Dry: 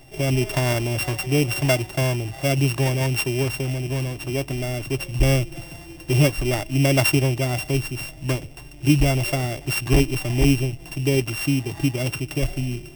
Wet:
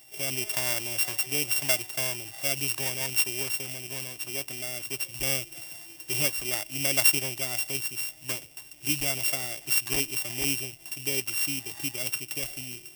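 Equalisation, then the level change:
spectral tilt +4 dB per octave
−9.5 dB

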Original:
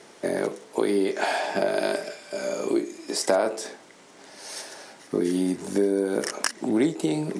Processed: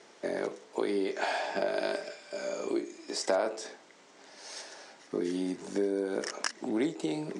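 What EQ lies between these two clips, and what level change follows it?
low-pass filter 7,700 Hz 24 dB per octave
low-shelf EQ 150 Hz −11.5 dB
−5.5 dB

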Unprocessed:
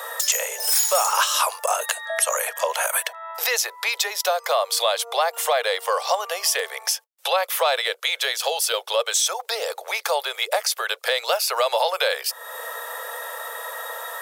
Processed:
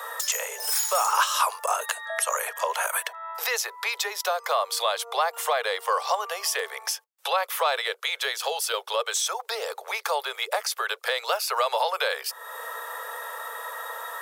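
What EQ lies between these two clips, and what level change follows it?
Chebyshev high-pass with heavy ripple 290 Hz, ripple 6 dB
0.0 dB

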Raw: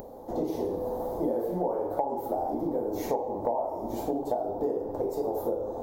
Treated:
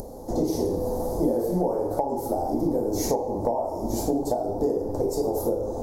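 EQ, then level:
low-shelf EQ 79 Hz +6 dB
low-shelf EQ 410 Hz +9 dB
flat-topped bell 7,300 Hz +15.5 dB
0.0 dB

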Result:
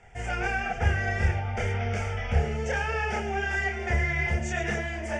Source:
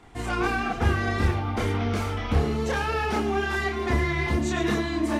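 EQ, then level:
low-pass filter 6,500 Hz 24 dB per octave
high-shelf EQ 3,700 Hz +8.5 dB
phaser with its sweep stopped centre 1,100 Hz, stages 6
0.0 dB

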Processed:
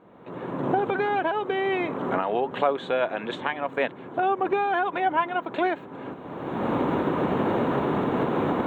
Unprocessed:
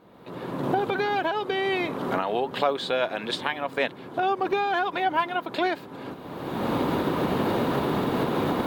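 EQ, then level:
moving average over 9 samples
low-shelf EQ 110 Hz −5.5 dB
+1.5 dB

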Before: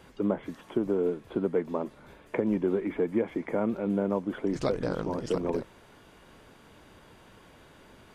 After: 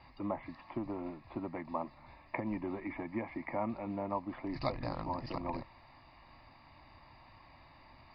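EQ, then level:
Chebyshev low-pass with heavy ripple 4,900 Hz, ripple 3 dB
parametric band 190 Hz −12 dB 0.38 octaves
phaser with its sweep stopped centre 2,200 Hz, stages 8
+2.0 dB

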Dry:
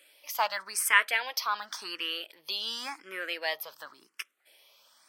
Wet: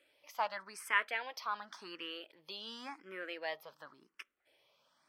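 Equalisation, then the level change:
RIAA equalisation playback
−7.0 dB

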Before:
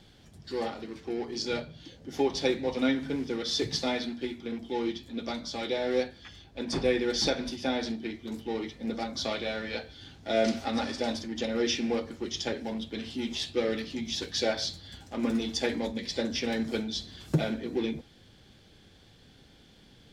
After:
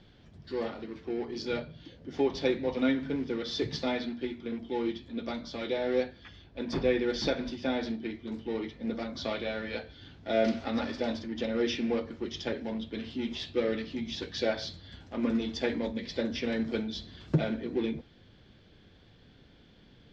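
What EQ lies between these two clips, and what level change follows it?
high-frequency loss of the air 180 metres
notch filter 800 Hz, Q 15
0.0 dB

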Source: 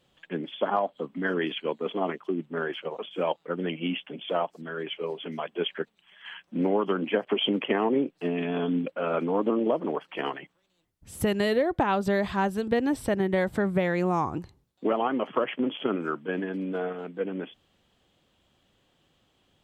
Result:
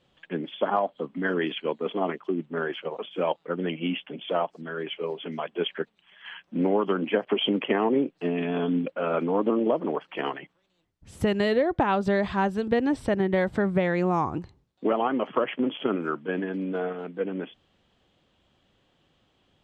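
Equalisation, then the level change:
high-frequency loss of the air 74 metres
+1.5 dB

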